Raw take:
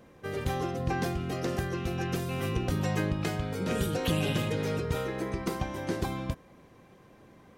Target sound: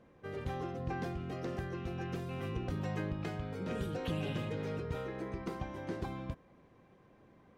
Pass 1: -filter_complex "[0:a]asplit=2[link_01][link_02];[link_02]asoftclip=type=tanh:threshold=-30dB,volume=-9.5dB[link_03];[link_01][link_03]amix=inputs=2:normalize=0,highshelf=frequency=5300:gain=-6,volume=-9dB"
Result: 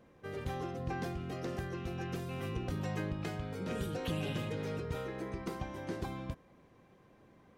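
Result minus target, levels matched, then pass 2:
8,000 Hz band +5.5 dB
-filter_complex "[0:a]asplit=2[link_01][link_02];[link_02]asoftclip=type=tanh:threshold=-30dB,volume=-9.5dB[link_03];[link_01][link_03]amix=inputs=2:normalize=0,highshelf=frequency=5300:gain=-14.5,volume=-9dB"

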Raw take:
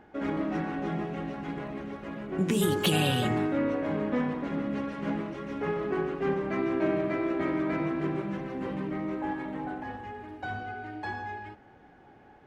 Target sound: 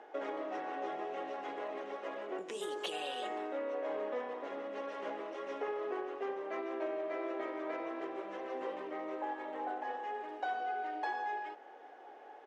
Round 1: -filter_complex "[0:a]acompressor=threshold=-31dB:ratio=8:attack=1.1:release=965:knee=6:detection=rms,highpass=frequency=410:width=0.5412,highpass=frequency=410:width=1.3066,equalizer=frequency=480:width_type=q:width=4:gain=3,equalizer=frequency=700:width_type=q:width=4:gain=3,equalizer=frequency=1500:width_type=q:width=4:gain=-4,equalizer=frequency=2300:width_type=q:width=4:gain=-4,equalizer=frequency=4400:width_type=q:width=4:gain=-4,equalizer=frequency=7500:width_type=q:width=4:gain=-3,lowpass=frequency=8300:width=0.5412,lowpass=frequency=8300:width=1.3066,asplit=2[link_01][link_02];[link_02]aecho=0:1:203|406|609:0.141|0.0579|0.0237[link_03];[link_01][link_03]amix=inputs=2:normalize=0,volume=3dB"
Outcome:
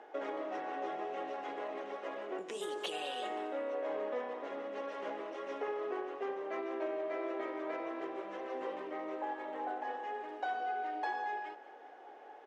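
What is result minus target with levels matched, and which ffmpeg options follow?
echo-to-direct +9 dB
-filter_complex "[0:a]acompressor=threshold=-31dB:ratio=8:attack=1.1:release=965:knee=6:detection=rms,highpass=frequency=410:width=0.5412,highpass=frequency=410:width=1.3066,equalizer=frequency=480:width_type=q:width=4:gain=3,equalizer=frequency=700:width_type=q:width=4:gain=3,equalizer=frequency=1500:width_type=q:width=4:gain=-4,equalizer=frequency=2300:width_type=q:width=4:gain=-4,equalizer=frequency=4400:width_type=q:width=4:gain=-4,equalizer=frequency=7500:width_type=q:width=4:gain=-3,lowpass=frequency=8300:width=0.5412,lowpass=frequency=8300:width=1.3066,asplit=2[link_01][link_02];[link_02]aecho=0:1:203|406:0.0501|0.0205[link_03];[link_01][link_03]amix=inputs=2:normalize=0,volume=3dB"

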